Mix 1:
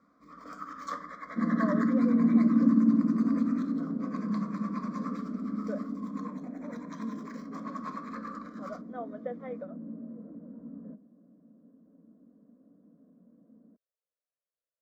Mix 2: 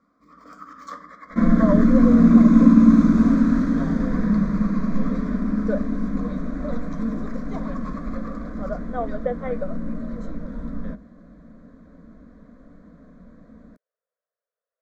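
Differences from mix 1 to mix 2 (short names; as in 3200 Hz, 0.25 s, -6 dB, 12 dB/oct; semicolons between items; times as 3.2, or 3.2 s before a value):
speech +11.5 dB; second sound: remove ladder band-pass 320 Hz, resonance 25%; master: remove HPF 60 Hz 12 dB/oct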